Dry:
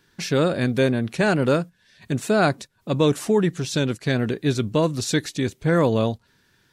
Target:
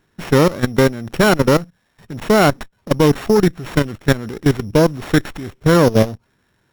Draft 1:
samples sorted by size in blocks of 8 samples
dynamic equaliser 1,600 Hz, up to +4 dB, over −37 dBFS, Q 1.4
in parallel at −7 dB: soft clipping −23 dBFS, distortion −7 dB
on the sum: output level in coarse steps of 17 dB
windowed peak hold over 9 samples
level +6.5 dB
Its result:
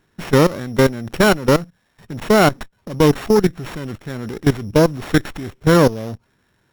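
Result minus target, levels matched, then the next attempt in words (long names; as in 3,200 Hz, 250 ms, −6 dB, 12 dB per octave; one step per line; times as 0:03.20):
soft clipping: distortion +9 dB
samples sorted by size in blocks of 8 samples
dynamic equaliser 1,600 Hz, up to +4 dB, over −37 dBFS, Q 1.4
in parallel at −7 dB: soft clipping −13.5 dBFS, distortion −17 dB
on the sum: output level in coarse steps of 17 dB
windowed peak hold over 9 samples
level +6.5 dB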